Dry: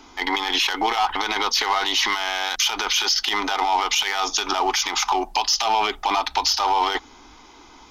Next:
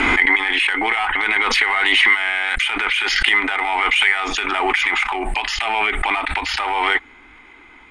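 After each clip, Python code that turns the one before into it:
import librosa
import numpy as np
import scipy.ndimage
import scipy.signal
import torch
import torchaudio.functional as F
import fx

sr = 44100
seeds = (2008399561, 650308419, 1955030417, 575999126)

y = fx.curve_eq(x, sr, hz=(380.0, 990.0, 2100.0, 6000.0, 8700.0, 13000.0), db=(0, -3, 14, -23, 13, -25))
y = fx.pre_swell(y, sr, db_per_s=20.0)
y = y * librosa.db_to_amplitude(-1.5)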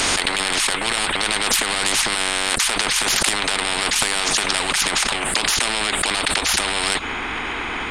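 y = fx.spectral_comp(x, sr, ratio=10.0)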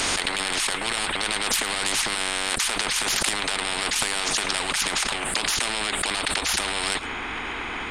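y = x + 10.0 ** (-19.5 / 20.0) * np.pad(x, (int(110 * sr / 1000.0), 0))[:len(x)]
y = y * librosa.db_to_amplitude(-5.0)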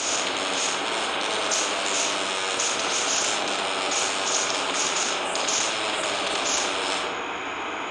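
y = fx.cabinet(x, sr, low_hz=150.0, low_slope=12, high_hz=7100.0, hz=(150.0, 220.0, 600.0, 1900.0, 4500.0, 6700.0), db=(-9, -7, 3, -9, -5, 9))
y = fx.rev_freeverb(y, sr, rt60_s=2.3, hf_ratio=0.35, predelay_ms=5, drr_db=-3.5)
y = y * librosa.db_to_amplitude(-2.5)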